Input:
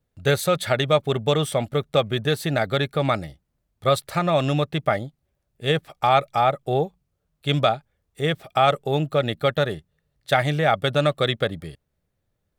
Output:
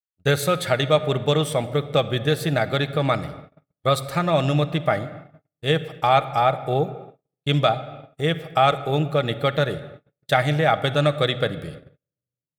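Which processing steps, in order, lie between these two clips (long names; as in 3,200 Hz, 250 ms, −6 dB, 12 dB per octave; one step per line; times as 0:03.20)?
rectangular room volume 3,300 cubic metres, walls mixed, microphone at 0.59 metres
noise gate −38 dBFS, range −43 dB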